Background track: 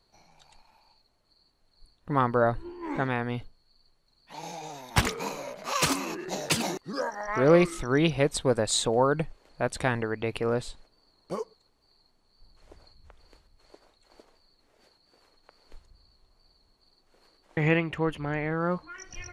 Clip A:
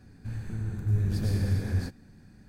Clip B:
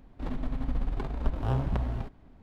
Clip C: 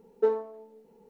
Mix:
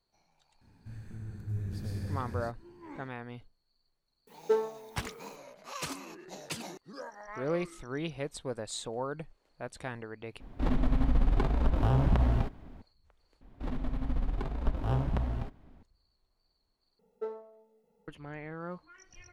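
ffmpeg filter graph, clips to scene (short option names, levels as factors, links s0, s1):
-filter_complex "[3:a]asplit=2[s0][s1];[2:a]asplit=2[s2][s3];[0:a]volume=0.237[s4];[s0]crystalizer=i=6:c=0[s5];[s2]alimiter=level_in=10:limit=0.891:release=50:level=0:latency=1[s6];[s1]aecho=1:1:1.5:0.91[s7];[s4]asplit=4[s8][s9][s10][s11];[s8]atrim=end=10.404[s12];[s6]atrim=end=2.42,asetpts=PTS-STARTPTS,volume=0.188[s13];[s9]atrim=start=12.816:end=13.414[s14];[s3]atrim=end=2.42,asetpts=PTS-STARTPTS,volume=0.841[s15];[s10]atrim=start=15.826:end=16.994[s16];[s7]atrim=end=1.09,asetpts=PTS-STARTPTS,volume=0.237[s17];[s11]atrim=start=18.076[s18];[1:a]atrim=end=2.48,asetpts=PTS-STARTPTS,volume=0.335,afade=t=in:d=0.004:c=hsin,afade=t=out:st=2.476:d=0.004:c=hsin,adelay=610[s19];[s5]atrim=end=1.09,asetpts=PTS-STARTPTS,volume=0.668,afade=t=in:d=0.004:c=hsin,afade=t=out:st=1.086:d=0.004:c=hsin,adelay=4270[s20];[s12][s13]acrossfade=d=0.004:c1=hsin:c2=hsin[s21];[s21][s14]acrossfade=d=0.004:c1=hsin:c2=hsin[s22];[s22][s15]acrossfade=d=0.004:c1=hsin:c2=hsin[s23];[s23][s16]acrossfade=d=0.004:c1=hsin:c2=hsin[s24];[s24][s17]acrossfade=d=0.004:c1=hsin:c2=hsin[s25];[s25][s18]acrossfade=d=0.004:c1=hsin:c2=hsin[s26];[s26][s19][s20]amix=inputs=3:normalize=0"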